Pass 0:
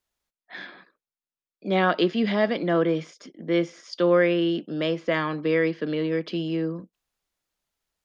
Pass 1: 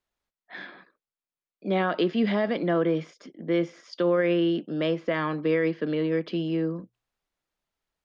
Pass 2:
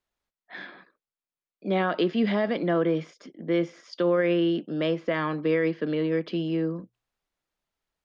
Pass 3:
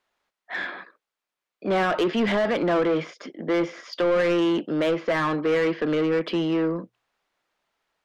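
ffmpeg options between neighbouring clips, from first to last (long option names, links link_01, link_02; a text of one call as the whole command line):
ffmpeg -i in.wav -af "highshelf=frequency=4800:gain=-11,bandreject=frequency=60:width_type=h:width=6,bandreject=frequency=120:width_type=h:width=6,alimiter=limit=-15.5dB:level=0:latency=1:release=45" out.wav
ffmpeg -i in.wav -af anull out.wav
ffmpeg -i in.wav -filter_complex "[0:a]asplit=2[link_01][link_02];[link_02]highpass=frequency=720:poles=1,volume=20dB,asoftclip=type=tanh:threshold=-15dB[link_03];[link_01][link_03]amix=inputs=2:normalize=0,lowpass=frequency=2200:poles=1,volume=-6dB" out.wav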